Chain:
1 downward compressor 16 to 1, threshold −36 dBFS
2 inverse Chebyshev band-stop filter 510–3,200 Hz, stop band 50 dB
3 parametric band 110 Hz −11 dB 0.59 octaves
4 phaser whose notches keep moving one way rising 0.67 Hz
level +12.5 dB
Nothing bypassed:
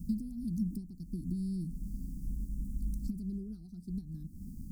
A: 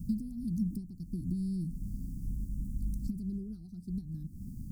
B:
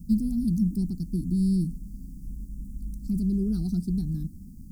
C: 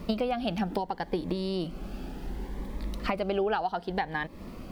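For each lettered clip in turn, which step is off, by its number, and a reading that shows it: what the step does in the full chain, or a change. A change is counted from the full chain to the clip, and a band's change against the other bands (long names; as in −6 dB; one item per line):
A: 3, 125 Hz band +2.0 dB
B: 1, average gain reduction 8.5 dB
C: 2, 500 Hz band +25.5 dB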